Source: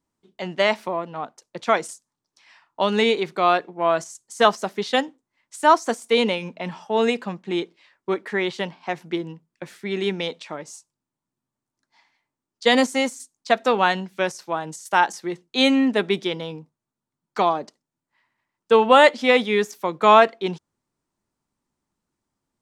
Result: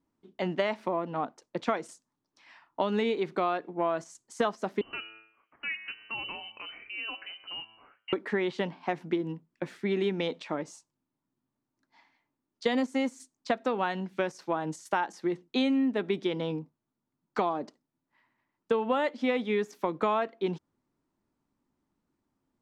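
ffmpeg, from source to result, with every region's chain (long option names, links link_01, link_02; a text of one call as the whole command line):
ffmpeg -i in.wav -filter_complex "[0:a]asettb=1/sr,asplit=3[link_01][link_02][link_03];[link_01]atrim=end=4.814[link_04];[link_02]atrim=start=4.81:end=8.13,asetpts=PTS-STARTPTS,afade=type=in:duration=0.004:curve=qsin,afade=type=out:start_time=3.316:duration=0.004:curve=qsin,lowpass=frequency=2700:width_type=q:width=0.5098,lowpass=frequency=2700:width_type=q:width=0.6013,lowpass=frequency=2700:width_type=q:width=0.9,lowpass=frequency=2700:width_type=q:width=2.563,afreqshift=-3200,bandreject=frequency=110.6:width_type=h:width=4,bandreject=frequency=221.2:width_type=h:width=4,bandreject=frequency=331.8:width_type=h:width=4,bandreject=frequency=442.4:width_type=h:width=4,bandreject=frequency=553:width_type=h:width=4,bandreject=frequency=663.6:width_type=h:width=4,bandreject=frequency=774.2:width_type=h:width=4,bandreject=frequency=884.8:width_type=h:width=4,bandreject=frequency=995.4:width_type=h:width=4,bandreject=frequency=1106:width_type=h:width=4,bandreject=frequency=1216.6:width_type=h:width=4,bandreject=frequency=1327.2:width_type=h:width=4,bandreject=frequency=1437.8:width_type=h:width=4,bandreject=frequency=1548.4:width_type=h:width=4,bandreject=frequency=1659:width_type=h:width=4,bandreject=frequency=1769.6:width_type=h:width=4,bandreject=frequency=1880.2:width_type=h:width=4,bandreject=frequency=1990.8:width_type=h:width=4,bandreject=frequency=2101.4:width_type=h:width=4,bandreject=frequency=2212:width_type=h:width=4,bandreject=frequency=2322.6:width_type=h:width=4,bandreject=frequency=2433.2:width_type=h:width=4,bandreject=frequency=2543.8:width_type=h:width=4,bandreject=frequency=2654.4:width_type=h:width=4,bandreject=frequency=2765:width_type=h:width=4,bandreject=frequency=2875.6:width_type=h:width=4,bandreject=frequency=2986.2:width_type=h:width=4,bandreject=frequency=3096.8:width_type=h:width=4,acompressor=threshold=-43dB:ratio=2:attack=3.2:release=140:knee=1:detection=peak[link_05];[link_03]atrim=start=8.126[link_06];[link_04][link_05]acrossfade=duration=0.004:curve1=hsin:curve2=qsin[link_07];[link_07][link_06]acrossfade=duration=0.004:curve1=qsin:curve2=hsin,lowpass=frequency=2400:poles=1,equalizer=frequency=280:width=2.2:gain=6,acompressor=threshold=-25dB:ratio=6" out.wav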